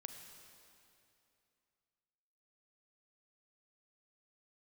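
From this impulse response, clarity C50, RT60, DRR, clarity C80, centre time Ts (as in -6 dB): 6.0 dB, 2.7 s, 5.5 dB, 6.5 dB, 53 ms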